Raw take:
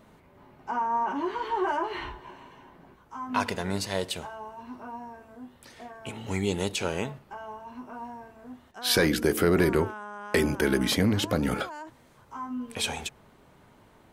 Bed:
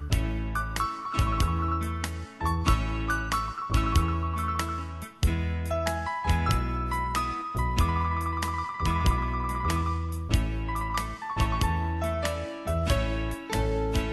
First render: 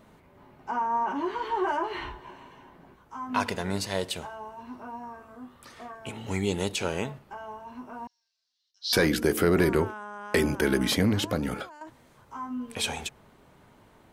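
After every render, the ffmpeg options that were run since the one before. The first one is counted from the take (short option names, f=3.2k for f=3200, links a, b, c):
-filter_complex "[0:a]asettb=1/sr,asplit=3[a][b][c];[a]atrim=end=5.034[d];[b]atrim=start=5.03:end=5.95,asetpts=PTS-STARTPTS,afade=t=in:d=0.004:c=qsin,afade=t=out:st=0.916:d=0.004:c=qsin,equalizer=f=1.2k:t=o:w=0.31:g=12[e];[c]atrim=start=5.946[f];[d][e]acrossfade=d=0.004:c1=hsin:c2=qsin[g];[g][f]acrossfade=d=0.004:c1=qsin:c2=hsin,asettb=1/sr,asplit=3[h][i][j];[h]atrim=end=8.074[k];[i]atrim=start=8.07:end=8.93,asetpts=PTS-STARTPTS,afade=t=in:d=0.004:c=qsin,afade=t=out:st=0.856:d=0.004:c=qsin,asuperpass=centerf=4800:order=4:qfactor=2.8[l];[j]atrim=start=8.926[m];[k][l]acrossfade=d=0.004:c1=hsin:c2=qsin[n];[n][m]acrossfade=d=0.004:c1=qsin:c2=hsin,asplit=2[o][p];[o]atrim=end=11.81,asetpts=PTS-STARTPTS,afade=t=out:st=11.14:d=0.67:silence=0.334965[q];[p]atrim=start=11.81,asetpts=PTS-STARTPTS,afade=t=in:d=0.004:c=hsin:silence=0.334965[r];[q][r]concat=n=2:v=0:a=1"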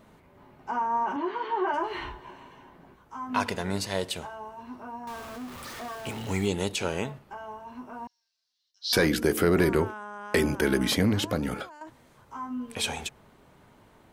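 -filter_complex "[0:a]asettb=1/sr,asplit=3[a][b][c];[a]atrim=end=1.164[d];[b]atrim=start=1.16:end=1.74,asetpts=PTS-STARTPTS,afade=t=in:d=0.004:c=qsin,afade=t=out:st=0.576:d=0.004:c=qsin,highpass=190,lowpass=3.6k[e];[c]atrim=start=1.736[f];[d][e]acrossfade=d=0.004:c1=hsin:c2=qsin[g];[g][f]acrossfade=d=0.004:c1=qsin:c2=hsin,asettb=1/sr,asplit=3[h][i][j];[h]atrim=end=5.074[k];[i]atrim=start=5.07:end=6.48,asetpts=PTS-STARTPTS,afade=t=in:d=0.004:c=qsin,afade=t=out:st=1.406:d=0.004:c=qsin,aeval=exprs='val(0)+0.5*0.0133*sgn(val(0))':c=same[l];[j]atrim=start=6.476[m];[k][l]acrossfade=d=0.004:c1=hsin:c2=qsin[n];[n][m]acrossfade=d=0.004:c1=qsin:c2=hsin"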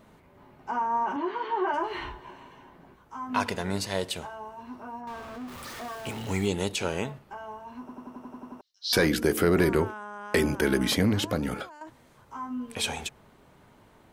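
-filter_complex "[0:a]asplit=3[a][b][c];[a]afade=t=out:st=5:d=0.02[d];[b]highshelf=f=5.4k:g=-12,afade=t=in:st=5:d=0.02,afade=t=out:st=5.47:d=0.02[e];[c]afade=t=in:st=5.47:d=0.02[f];[d][e][f]amix=inputs=3:normalize=0,asplit=10[g][h][i][j][k][l][m][n][o][p];[g]atrim=end=7.892[q];[h]atrim=start=7.798:end=7.892[r];[i]atrim=start=7.798:end=7.892[s];[j]atrim=start=7.798:end=7.892[t];[k]atrim=start=7.798:end=7.892[u];[l]atrim=start=7.798:end=7.892[v];[m]atrim=start=7.798:end=7.892[w];[n]atrim=start=7.798:end=7.892[x];[o]atrim=start=7.798:end=7.892[y];[p]atrim=start=8.608[z];[q][r]acrossfade=d=0.004:c1=hsin:c2=hsin[aa];[aa][s]acrossfade=d=0.004:c1=hsin:c2=hsin[ab];[ab][t]acrossfade=d=0.004:c1=hsin:c2=hsin[ac];[ac][u]acrossfade=d=0.004:c1=hsin:c2=hsin[ad];[ad][v]acrossfade=d=0.004:c1=hsin:c2=hsin[ae];[ae][w]acrossfade=d=0.004:c1=hsin:c2=hsin[af];[af][x]acrossfade=d=0.004:c1=hsin:c2=hsin[ag];[ag][y]acrossfade=d=0.004:c1=hsin:c2=hsin[ah];[ah][z]acrossfade=d=0.004:c1=hsin:c2=hsin"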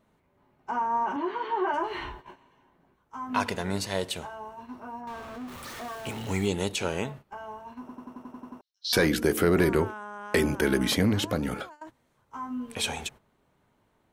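-af "bandreject=f=4.9k:w=24,agate=range=-12dB:threshold=-44dB:ratio=16:detection=peak"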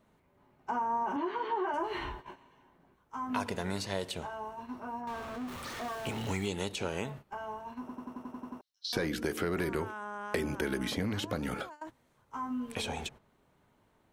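-filter_complex "[0:a]acrossover=split=870|6900[a][b][c];[a]acompressor=threshold=-32dB:ratio=4[d];[b]acompressor=threshold=-38dB:ratio=4[e];[c]acompressor=threshold=-53dB:ratio=4[f];[d][e][f]amix=inputs=3:normalize=0"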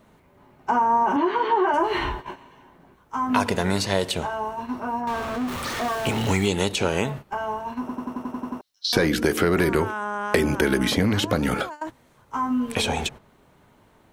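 -af "volume=12dB"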